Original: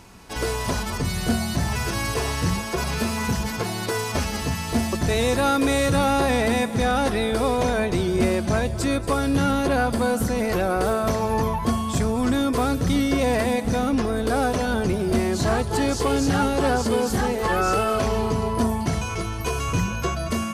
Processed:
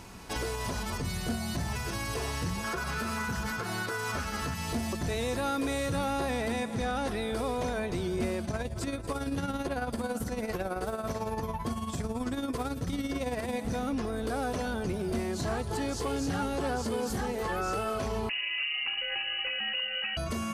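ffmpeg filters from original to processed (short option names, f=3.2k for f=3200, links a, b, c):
-filter_complex "[0:a]asettb=1/sr,asplit=3[a][b][c];[a]atrim=end=2.644[d];[b]atrim=start=2.64:end=4.54,asetpts=PTS-STARTPTS,afade=t=in:d=0.004:c=qsin,afade=t=out:st=1.896:d=0.004:c=qsin,equalizer=f=1.4k:w=2.7:g=12[e];[c]atrim=start=4.536[f];[d][e]acrossfade=d=0.004:c1=hsin:c2=qsin[g];[g][f]acrossfade=d=0.004:c1=qsin:c2=hsin,asettb=1/sr,asplit=3[h][i][j];[h]atrim=end=6.524[k];[i]atrim=start=6.52:end=7.08,asetpts=PTS-STARTPTS,afade=t=in:d=0.004:c=qsin,afade=t=out:st=0.556:d=0.004:c=qsin,lowpass=11k[l];[j]atrim=start=7.076[m];[k][l]acrossfade=d=0.004:c1=hsin:c2=qsin[n];[n][m]acrossfade=d=0.004:c1=qsin:c2=hsin,asplit=3[o][p][q];[o]afade=t=out:st=8.42:d=0.02[r];[p]tremolo=f=18:d=0.61,afade=t=in:st=8.42:d=0.02,afade=t=out:st=13.52:d=0.02[s];[q]afade=t=in:st=13.52:d=0.02[t];[r][s][t]amix=inputs=3:normalize=0,asettb=1/sr,asplit=3[u][v][w];[u]atrim=end=18.294[x];[v]atrim=start=18.29:end=20.17,asetpts=PTS-STARTPTS,afade=t=in:d=0.004:c=qsin,afade=t=out:st=1.876:d=0.004:c=qsin,lowpass=f=2.6k:t=q:w=0.5098,lowpass=f=2.6k:t=q:w=0.6013,lowpass=f=2.6k:t=q:w=0.9,lowpass=f=2.6k:t=q:w=2.563,afreqshift=-3000[y];[w]atrim=start=20.166[z];[x][y]acrossfade=d=0.004:c1=hsin:c2=qsin[aa];[aa][z]acrossfade=d=0.004:c1=qsin:c2=hsin,alimiter=limit=-24dB:level=0:latency=1:release=333"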